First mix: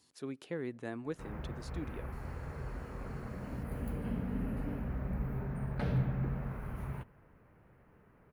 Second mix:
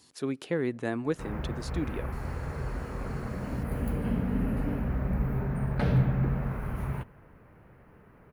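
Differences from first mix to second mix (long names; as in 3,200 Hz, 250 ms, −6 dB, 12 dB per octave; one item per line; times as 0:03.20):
speech +9.5 dB
background +7.5 dB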